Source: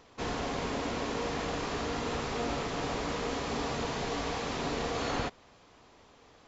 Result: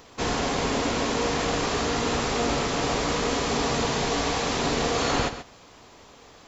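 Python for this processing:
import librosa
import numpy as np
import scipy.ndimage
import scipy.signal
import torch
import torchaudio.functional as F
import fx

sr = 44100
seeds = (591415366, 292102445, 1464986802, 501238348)

y = fx.high_shelf(x, sr, hz=6800.0, db=10.5)
y = y + 10.0 ** (-12.0 / 20.0) * np.pad(y, (int(132 * sr / 1000.0), 0))[:len(y)]
y = y * 10.0 ** (7.5 / 20.0)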